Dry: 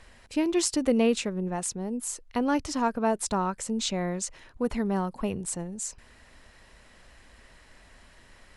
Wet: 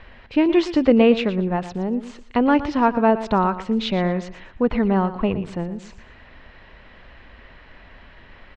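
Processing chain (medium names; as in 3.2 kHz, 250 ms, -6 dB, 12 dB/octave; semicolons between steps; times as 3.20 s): low-pass 3.4 kHz 24 dB/octave; feedback delay 117 ms, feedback 25%, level -13.5 dB; trim +8.5 dB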